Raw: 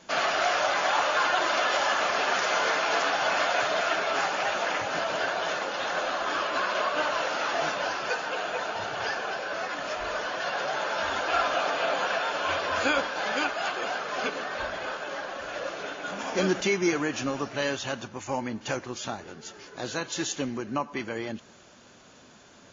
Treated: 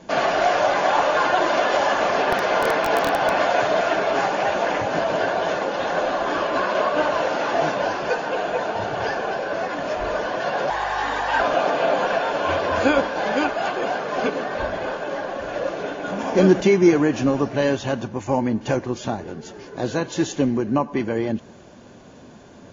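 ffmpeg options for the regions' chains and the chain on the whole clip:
-filter_complex "[0:a]asettb=1/sr,asplit=3[a][b][c];[a]atrim=end=2.224[d];[b]atrim=start=2.22:end=3.41,asetpts=PTS-STARTPTS,afade=t=in:d=0.004:c=qsin,afade=t=out:st=1.186:d=0.004:c=qsin,lowpass=5.3k,aeval=exprs='(mod(5.96*val(0)+1,2)-1)/5.96':c=same[e];[c]atrim=start=3.406[f];[d][e]acrossfade=d=0.004:c1=hsin:c2=qsin[g];[g][f]acrossfade=d=0.004:c1=qsin:c2=hsin,asettb=1/sr,asplit=3[h][i][j];[h]atrim=end=10.704[k];[i]atrim=start=10.7:end=11.4,asetpts=PTS-STARTPTS,afade=t=in:d=0.004:c=qsin,afade=t=out:st=0.696:d=0.004:c=qsin,afreqshift=200,aeval=exprs='val(0)+0.002*(sin(2*PI*50*n/s)+sin(2*PI*2*50*n/s)/2+sin(2*PI*3*50*n/s)/3+sin(2*PI*4*50*n/s)/4+sin(2*PI*5*50*n/s)/5)':c=same[l];[j]atrim=start=11.396[m];[k][l]acrossfade=d=0.004:c1=hsin:c2=qsin[n];[n][m]acrossfade=d=0.004:c1=qsin:c2=hsin,tiltshelf=f=1.1k:g=7,bandreject=f=1.3k:w=9.4,volume=5.5dB"

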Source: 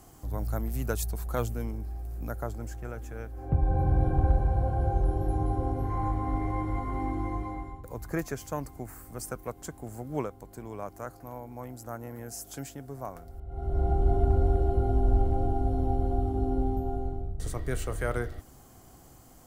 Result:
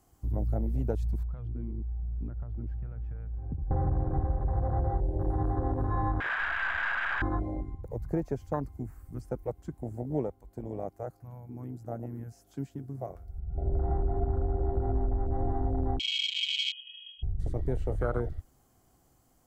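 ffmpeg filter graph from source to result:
-filter_complex "[0:a]asettb=1/sr,asplit=3[a][b][c];[a]atrim=end=1.234[d];[b]atrim=start=1.23:end=3.71,asetpts=PTS-STARTPTS,afade=t=in:d=0.004:c=qsin,afade=t=out:st=2.476:d=0.004:c=qsin,lowpass=f=4k:w=0.5412,lowpass=f=4k:w=1.3066,aemphasis=mode=reproduction:type=75fm,acompressor=threshold=-34dB:ratio=10:attack=3.2:release=140:knee=1:detection=peak[e];[c]atrim=start=3.706[f];[d][e]acrossfade=d=0.004:c1=hsin:c2=qsin[g];[g][f]acrossfade=d=0.004:c1=qsin:c2=hsin,asettb=1/sr,asplit=3[h][i][j];[h]atrim=end=6.204[k];[i]atrim=start=6.2:end=7.22,asetpts=PTS-STARTPTS,afade=t=in:d=0.004:c=qsin,afade=t=out:st=1.016:d=0.004:c=qsin,aeval=exprs='(mod(39.8*val(0)+1,2)-1)/39.8':c=same,lowpass=f=1.6k:t=q:w=9.3,aeval=exprs='(tanh(28.2*val(0)+0.45)-tanh(0.45))/28.2':c=same[l];[j]atrim=start=7.216[m];[k][l]acrossfade=d=0.004:c1=hsin:c2=qsin[n];[n][m]acrossfade=d=0.004:c1=qsin:c2=hsin,asettb=1/sr,asplit=3[o][p][q];[o]atrim=end=15.994[r];[p]atrim=start=15.99:end=17.23,asetpts=PTS-STARTPTS,afade=t=in:d=0.004:c=qsin,afade=t=out:st=1.236:d=0.004:c=qsin,agate=range=-33dB:threshold=-26dB:ratio=3:release=100:detection=peak,acompressor=threshold=-28dB:ratio=3:attack=3.2:release=140:knee=1:detection=peak,lowpass=f=2.8k:t=q:w=0.5098,lowpass=f=2.8k:t=q:w=0.6013,lowpass=f=2.8k:t=q:w=0.9,lowpass=f=2.8k:t=q:w=2.563,afreqshift=-3300[s];[q]atrim=start=17.226[t];[r][s]acrossfade=d=0.004:c1=hsin:c2=qsin[u];[u][t]acrossfade=d=0.004:c1=qsin:c2=hsin,acrossover=split=4800[v][w];[w]acompressor=threshold=-53dB:ratio=4:attack=1:release=60[x];[v][x]amix=inputs=2:normalize=0,afwtdn=0.0282,acompressor=threshold=-28dB:ratio=10,volume=4dB"

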